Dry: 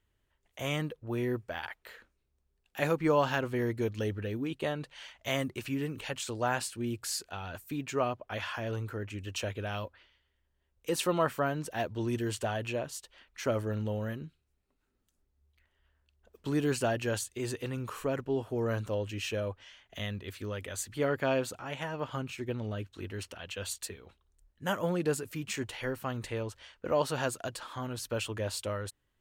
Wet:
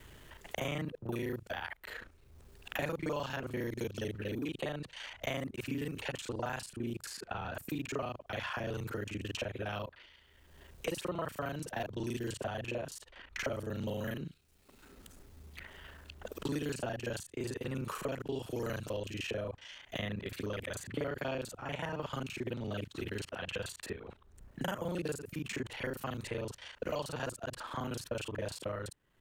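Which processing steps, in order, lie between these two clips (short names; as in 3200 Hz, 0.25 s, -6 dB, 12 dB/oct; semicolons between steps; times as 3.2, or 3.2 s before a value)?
local time reversal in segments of 34 ms; three-band squash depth 100%; gain -5 dB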